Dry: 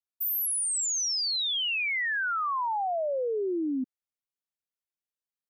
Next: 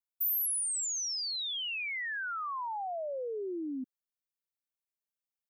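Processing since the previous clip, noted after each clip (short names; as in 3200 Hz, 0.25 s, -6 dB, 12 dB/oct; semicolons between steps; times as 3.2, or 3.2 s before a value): high shelf 11000 Hz +9.5 dB; gain -7.5 dB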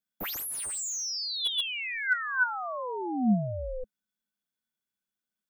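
ring modulator 250 Hz; small resonant body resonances 210/1500/3400 Hz, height 18 dB, ringing for 70 ms; slew limiter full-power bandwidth 120 Hz; gain +4.5 dB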